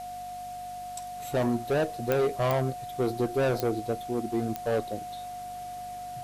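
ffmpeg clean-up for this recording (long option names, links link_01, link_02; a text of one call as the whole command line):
ffmpeg -i in.wav -af "adeclick=threshold=4,bandreject=frequency=48.9:width_type=h:width=4,bandreject=frequency=97.8:width_type=h:width=4,bandreject=frequency=146.7:width_type=h:width=4,bandreject=frequency=195.6:width_type=h:width=4,bandreject=frequency=244.5:width_type=h:width=4,bandreject=frequency=720:width=30,afwtdn=0.0028" out.wav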